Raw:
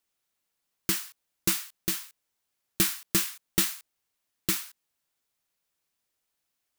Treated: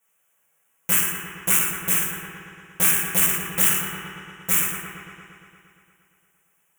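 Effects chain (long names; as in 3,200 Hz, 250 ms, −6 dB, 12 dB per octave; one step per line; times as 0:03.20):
low-shelf EQ 410 Hz −8 dB
in parallel at −3 dB: brickwall limiter −18 dBFS, peak gain reduction 9.5 dB
on the sum: Butterworth band-reject 4,400 Hz, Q 1.1
delay with a low-pass on its return 116 ms, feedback 73%, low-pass 2,300 Hz, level −6.5 dB
convolution reverb RT60 0.75 s, pre-delay 3 ms, DRR −8.5 dB
saturating transformer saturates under 4,000 Hz
level +1 dB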